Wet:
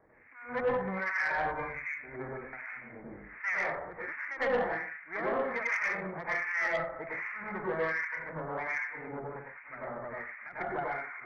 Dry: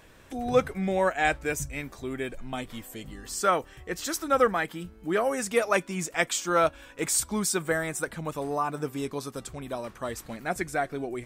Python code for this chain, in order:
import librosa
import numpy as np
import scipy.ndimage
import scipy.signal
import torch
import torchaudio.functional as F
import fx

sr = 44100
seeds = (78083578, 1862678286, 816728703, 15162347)

y = fx.lower_of_two(x, sr, delay_ms=0.41)
y = scipy.signal.sosfilt(scipy.signal.butter(16, 2200.0, 'lowpass', fs=sr, output='sos'), y)
y = fx.tilt_eq(y, sr, slope=4.0)
y = fx.rev_plate(y, sr, seeds[0], rt60_s=0.89, hf_ratio=0.95, predelay_ms=80, drr_db=-4.5)
y = fx.dynamic_eq(y, sr, hz=300.0, q=0.95, threshold_db=-43.0, ratio=4.0, max_db=-5)
y = fx.harmonic_tremolo(y, sr, hz=1.3, depth_pct=100, crossover_hz=1300.0)
y = 10.0 ** (-22.0 / 20.0) * np.tanh(y / 10.0 ** (-22.0 / 20.0))
y = fx.end_taper(y, sr, db_per_s=110.0)